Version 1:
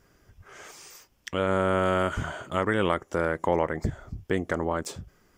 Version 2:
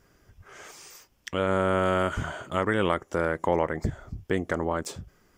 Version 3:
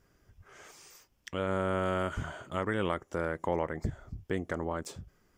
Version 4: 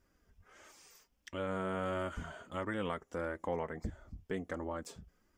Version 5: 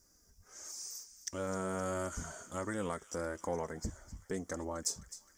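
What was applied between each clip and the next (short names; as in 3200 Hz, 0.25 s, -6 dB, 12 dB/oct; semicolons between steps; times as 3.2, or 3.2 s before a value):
nothing audible
low shelf 200 Hz +3 dB; gain -7 dB
flange 1.5 Hz, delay 3.2 ms, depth 1.5 ms, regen -25%; gain -2 dB
resonant high shelf 4200 Hz +12 dB, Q 3; thin delay 0.26 s, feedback 63%, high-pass 1900 Hz, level -13.5 dB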